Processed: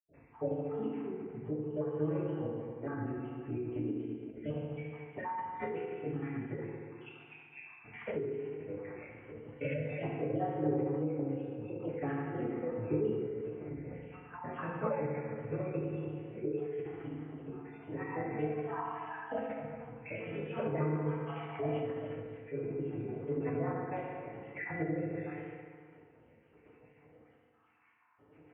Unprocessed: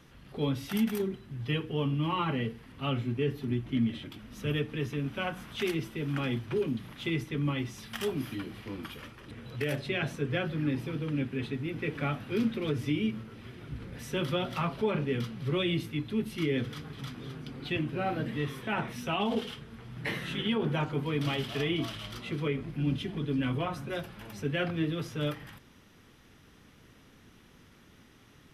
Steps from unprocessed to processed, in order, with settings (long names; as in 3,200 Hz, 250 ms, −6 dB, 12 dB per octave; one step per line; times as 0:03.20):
time-frequency cells dropped at random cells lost 66%
high-pass filter 88 Hz
tilt shelving filter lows +3 dB
feedback delay network reverb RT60 1.9 s, low-frequency decay 0.95×, high-frequency decay 0.6×, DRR −6.5 dB
downward compressor 1.5 to 1, threshold −29 dBFS, peak gain reduction 6.5 dB
Chebyshev low-pass with heavy ripple 2,400 Hz, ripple 6 dB
formants moved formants +4 semitones
flanger 0.81 Hz, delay 6.1 ms, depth 3.7 ms, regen +85%
every ending faded ahead of time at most 150 dB per second